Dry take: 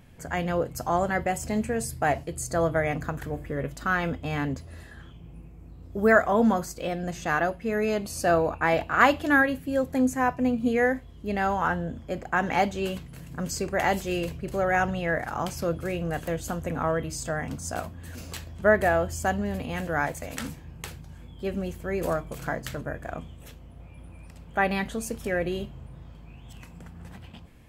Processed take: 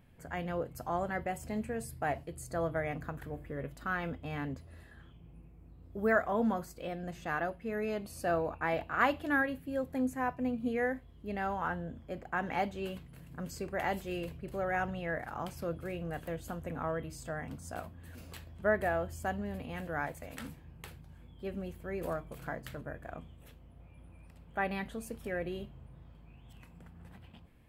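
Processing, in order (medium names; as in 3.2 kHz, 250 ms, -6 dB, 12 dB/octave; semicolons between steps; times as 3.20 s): peaking EQ 6.3 kHz -8 dB 0.9 oct; trim -9 dB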